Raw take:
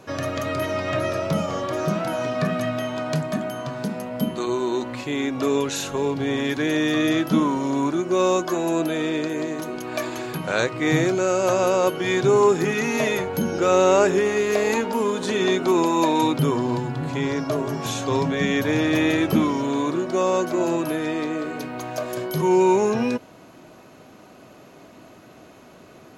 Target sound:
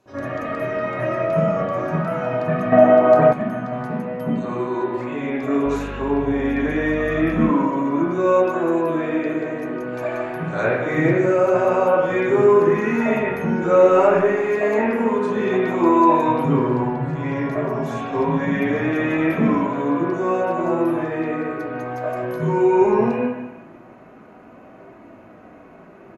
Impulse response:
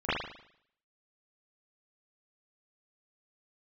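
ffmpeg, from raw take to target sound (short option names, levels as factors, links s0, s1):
-filter_complex "[0:a]asplit=2[s0][s1];[s1]adelay=150,highpass=300,lowpass=3400,asoftclip=type=hard:threshold=0.211,volume=0.355[s2];[s0][s2]amix=inputs=2:normalize=0[s3];[1:a]atrim=start_sample=2205,asetrate=29547,aresample=44100[s4];[s3][s4]afir=irnorm=-1:irlink=0,flanger=delay=3:depth=6.8:regen=-65:speed=0.16:shape=triangular,asettb=1/sr,asplit=3[s5][s6][s7];[s5]atrim=end=2.724[s8];[s6]atrim=start=2.72:end=3.33,asetpts=PTS-STARTPTS,afade=t=in:d=0.004:c=qsin,afade=t=out:st=0.606:d=0.004:c=qsin,equalizer=f=580:t=o:w=2.8:g=13.5[s9];[s7]atrim=start=3.326[s10];[s8][s9]acrossfade=d=0.004:c1=hsin:c2=qsin[s11];[s11][s10]acrossfade=d=0.004:c1=qsin:c2=hsin,asettb=1/sr,asplit=3[s12][s13][s14];[s12]atrim=end=5.664[s15];[s13]atrim=start=5.66:end=7.5,asetpts=PTS-STARTPTS,afade=t=in:d=0.004:c=qsin,afade=t=out:st=1.836:d=0.004:c=qsin,aeval=exprs='val(0)+0.0794*(sin(2*PI*50*n/s)+sin(2*PI*2*50*n/s)/2+sin(2*PI*3*50*n/s)/3+sin(2*PI*4*50*n/s)/4+sin(2*PI*5*50*n/s)/5)':c=same[s16];[s14]atrim=start=7.496[s17];[s15][s16]acrossfade=d=0.004:c1=hsin:c2=qsin[s18];[s18][s17]acrossfade=d=0.004:c1=qsin:c2=hsin,volume=0.355"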